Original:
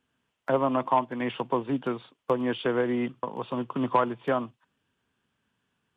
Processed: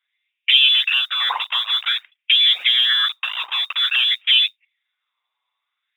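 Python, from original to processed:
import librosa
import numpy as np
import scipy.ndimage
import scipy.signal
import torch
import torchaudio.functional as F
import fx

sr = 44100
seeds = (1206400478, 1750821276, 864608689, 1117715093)

p1 = fx.fuzz(x, sr, gain_db=46.0, gate_db=-42.0)
p2 = x + F.gain(torch.from_numpy(p1), -5.0).numpy()
p3 = fx.env_flanger(p2, sr, rest_ms=8.9, full_db=-13.5)
p4 = fx.freq_invert(p3, sr, carrier_hz=3700)
p5 = fx.mod_noise(p4, sr, seeds[0], snr_db=32)
p6 = fx.filter_lfo_highpass(p5, sr, shape='sine', hz=0.51, low_hz=990.0, high_hz=2500.0, q=4.9)
y = F.gain(torch.from_numpy(p6), -2.5).numpy()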